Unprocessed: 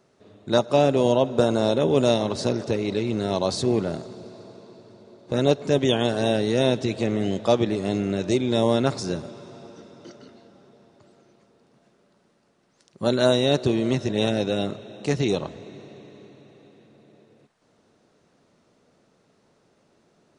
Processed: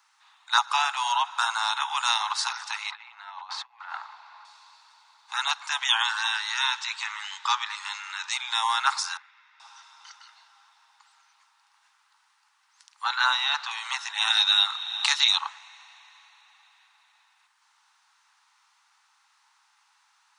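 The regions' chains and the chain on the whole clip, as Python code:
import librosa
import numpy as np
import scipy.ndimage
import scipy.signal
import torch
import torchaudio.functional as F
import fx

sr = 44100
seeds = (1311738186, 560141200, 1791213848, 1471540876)

y = fx.chain(x, sr, fx.over_compress(threshold_db=-29.0, ratio=-0.5),
    fx.lowpass(hz=2000.0, slope=12), at=(2.91, 4.45))
y = fx.chain(y, sr, fx.cheby1_bandpass(low_hz=890.0, high_hz=8100.0, order=4),
    fx.echo_single(ms=205, db=-20.5), at=(6.02, 8.33))
y = fx.chain(y, sr, fx.bandpass_q(hz=2000.0, q=3.6),
    fx.air_absorb(metres=56.0), at=(9.17, 9.6))
y = fx.chain(y, sr, fx.law_mismatch(coded='mu'),
    fx.air_absorb(metres=130.0), at=(13.04, 13.71))
y = fx.chain(y, sr, fx.peak_eq(hz=3700.0, db=12.5, octaves=0.32),
    fx.band_squash(depth_pct=70), at=(14.3, 15.38))
y = scipy.signal.sosfilt(scipy.signal.butter(16, 830.0, 'highpass', fs=sr, output='sos'), y)
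y = fx.dynamic_eq(y, sr, hz=1300.0, q=1.7, threshold_db=-48.0, ratio=4.0, max_db=6)
y = y * 10.0 ** (5.0 / 20.0)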